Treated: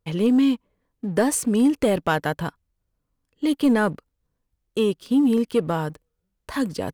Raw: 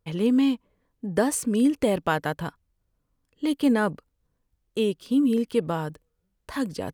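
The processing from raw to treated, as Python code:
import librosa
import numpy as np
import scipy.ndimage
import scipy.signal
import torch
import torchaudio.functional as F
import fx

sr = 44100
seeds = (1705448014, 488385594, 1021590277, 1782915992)

y = fx.leveller(x, sr, passes=1)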